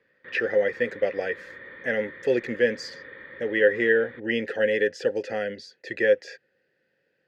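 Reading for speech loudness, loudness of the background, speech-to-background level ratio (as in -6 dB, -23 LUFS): -25.5 LUFS, -43.0 LUFS, 17.5 dB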